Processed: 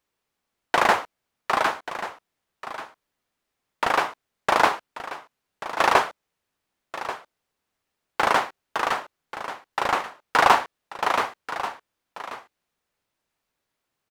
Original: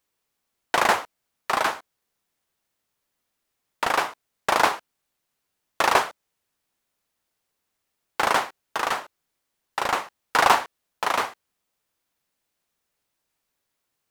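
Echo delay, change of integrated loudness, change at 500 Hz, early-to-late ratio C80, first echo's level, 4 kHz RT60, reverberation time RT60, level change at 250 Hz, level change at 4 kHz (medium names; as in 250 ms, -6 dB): 1136 ms, 0.0 dB, +1.5 dB, no reverb, -13.0 dB, no reverb, no reverb, +1.5 dB, -1.0 dB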